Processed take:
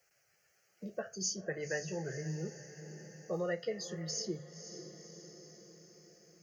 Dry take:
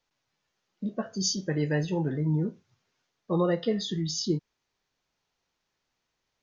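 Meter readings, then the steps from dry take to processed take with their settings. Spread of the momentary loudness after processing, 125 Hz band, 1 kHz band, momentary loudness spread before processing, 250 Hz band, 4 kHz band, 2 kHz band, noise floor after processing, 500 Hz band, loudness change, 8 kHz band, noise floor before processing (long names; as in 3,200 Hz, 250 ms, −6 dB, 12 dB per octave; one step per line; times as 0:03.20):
18 LU, −13.0 dB, −10.5 dB, 8 LU, −14.0 dB, −9.5 dB, −2.5 dB, −74 dBFS, −7.0 dB, −10.5 dB, can't be measured, −81 dBFS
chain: high-pass filter 89 Hz
mains-hum notches 50/100/150 Hz
harmonic and percussive parts rebalanced harmonic −4 dB
high-shelf EQ 4,200 Hz +9.5 dB
phaser with its sweep stopped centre 990 Hz, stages 6
feedback delay with all-pass diffusion 513 ms, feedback 45%, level −15 dB
multiband upward and downward compressor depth 40%
level −2.5 dB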